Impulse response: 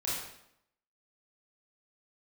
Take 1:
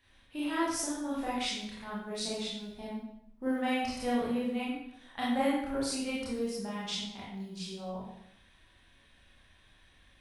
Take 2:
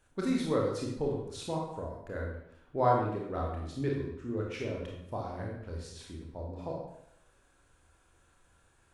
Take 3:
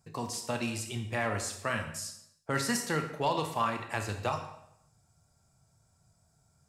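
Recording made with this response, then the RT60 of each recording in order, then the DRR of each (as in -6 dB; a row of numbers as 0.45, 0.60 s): 1; 0.75, 0.75, 0.75 s; -7.5, -2.0, 5.5 dB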